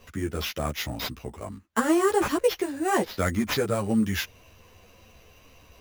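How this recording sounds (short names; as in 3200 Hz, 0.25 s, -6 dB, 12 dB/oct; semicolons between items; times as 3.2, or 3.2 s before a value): aliases and images of a low sample rate 8700 Hz, jitter 0%; a shimmering, thickened sound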